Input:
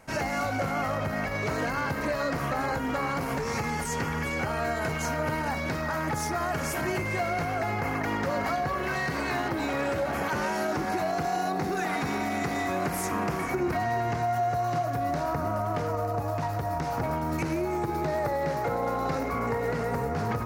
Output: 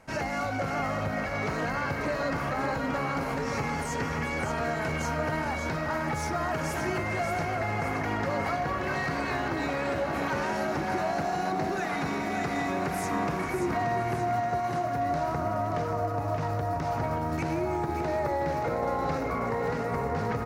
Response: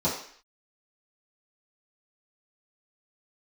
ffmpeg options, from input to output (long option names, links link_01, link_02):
-af "highshelf=frequency=10000:gain=-11,aecho=1:1:579|1158|1737|2316|2895|3474:0.447|0.228|0.116|0.0593|0.0302|0.0154,volume=-1.5dB"